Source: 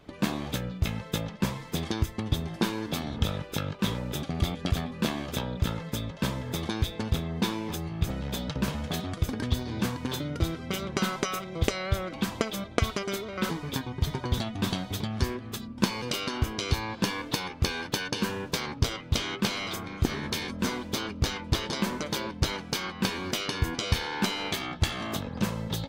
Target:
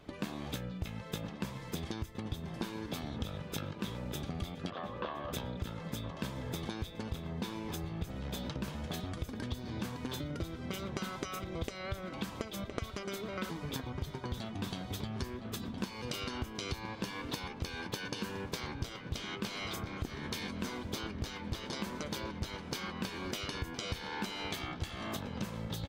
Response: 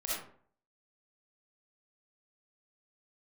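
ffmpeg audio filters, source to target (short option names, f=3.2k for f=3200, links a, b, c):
-filter_complex "[0:a]asettb=1/sr,asplit=3[a][b][c];[a]atrim=end=4.704[d];[b]atrim=start=4.7:end=5.33,asetpts=PTS-STARTPTS,afade=t=in:d=0.004:c=qsin,afade=t=out:st=0.626:d=0.004:c=qsin,highpass=440,equalizer=f=540:t=q:w=4:g=9,equalizer=f=1.1k:t=q:w=4:g=9,equalizer=f=2.3k:t=q:w=4:g=-9,lowpass=f=3.1k:w=0.5412,lowpass=f=3.1k:w=1.3066[e];[c]atrim=start=5.326[f];[d][e]acrossfade=d=0.004:c1=hsin:c2=qsin[g];[g][f]acrossfade=d=0.004:c1=qsin:c2=hsin,asplit=2[h][i];[i]adelay=1014,lowpass=f=1.8k:p=1,volume=-13dB,asplit=2[j][k];[k]adelay=1014,lowpass=f=1.8k:p=1,volume=0.55,asplit=2[l][m];[m]adelay=1014,lowpass=f=1.8k:p=1,volume=0.55,asplit=2[n][o];[o]adelay=1014,lowpass=f=1.8k:p=1,volume=0.55,asplit=2[p][q];[q]adelay=1014,lowpass=f=1.8k:p=1,volume=0.55,asplit=2[r][s];[s]adelay=1014,lowpass=f=1.8k:p=1,volume=0.55[t];[h][j][l][n][p][r][t]amix=inputs=7:normalize=0,acompressor=threshold=-34dB:ratio=5,volume=-1.5dB"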